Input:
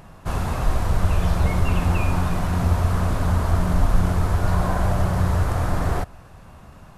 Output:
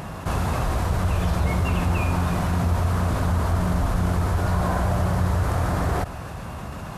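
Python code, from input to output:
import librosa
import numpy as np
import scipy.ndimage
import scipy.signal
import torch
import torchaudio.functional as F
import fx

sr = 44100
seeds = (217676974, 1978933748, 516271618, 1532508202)

y = scipy.signal.sosfilt(scipy.signal.butter(2, 49.0, 'highpass', fs=sr, output='sos'), x)
y = fx.env_flatten(y, sr, amount_pct=50)
y = F.gain(torch.from_numpy(y), -3.0).numpy()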